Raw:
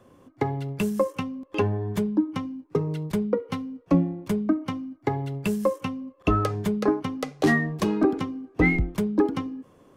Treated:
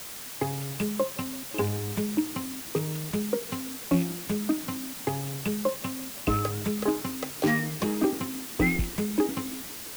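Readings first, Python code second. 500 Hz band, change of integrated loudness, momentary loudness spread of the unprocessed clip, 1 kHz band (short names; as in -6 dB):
-4.0 dB, -3.0 dB, 10 LU, -3.5 dB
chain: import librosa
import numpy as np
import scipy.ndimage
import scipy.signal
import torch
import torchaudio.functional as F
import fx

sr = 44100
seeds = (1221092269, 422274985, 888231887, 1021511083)

y = fx.rattle_buzz(x, sr, strikes_db=-23.0, level_db=-26.0)
y = fx.quant_dither(y, sr, seeds[0], bits=6, dither='triangular')
y = fx.echo_warbled(y, sr, ms=168, feedback_pct=77, rate_hz=2.8, cents=207, wet_db=-24.0)
y = y * librosa.db_to_amplitude(-4.0)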